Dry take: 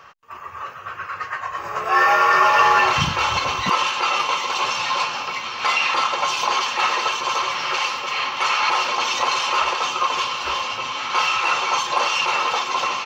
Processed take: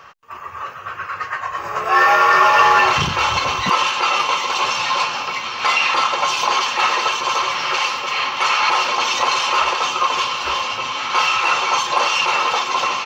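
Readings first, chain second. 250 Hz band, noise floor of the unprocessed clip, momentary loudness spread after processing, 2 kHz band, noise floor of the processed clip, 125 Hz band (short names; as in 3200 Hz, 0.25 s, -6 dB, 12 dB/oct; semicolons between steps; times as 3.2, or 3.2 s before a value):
+2.5 dB, -36 dBFS, 12 LU, +3.0 dB, -33 dBFS, +1.0 dB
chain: core saturation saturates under 710 Hz; gain +3 dB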